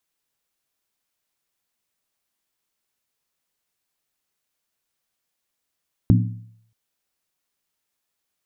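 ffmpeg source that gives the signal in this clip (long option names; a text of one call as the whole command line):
ffmpeg -f lavfi -i "aevalsrc='0.299*pow(10,-3*t/0.67)*sin(2*PI*112*t)+0.2*pow(10,-3*t/0.531)*sin(2*PI*178.5*t)+0.133*pow(10,-3*t/0.458)*sin(2*PI*239.2*t)+0.0891*pow(10,-3*t/0.442)*sin(2*PI*257.2*t)+0.0596*pow(10,-3*t/0.411)*sin(2*PI*297.1*t)':duration=0.63:sample_rate=44100" out.wav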